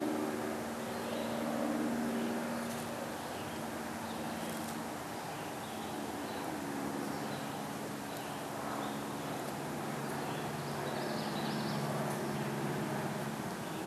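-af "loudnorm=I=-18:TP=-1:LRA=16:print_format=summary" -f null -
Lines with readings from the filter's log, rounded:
Input Integrated:    -38.2 LUFS
Input True Peak:     -21.6 dBTP
Input LRA:             2.8 LU
Input Threshold:     -48.2 LUFS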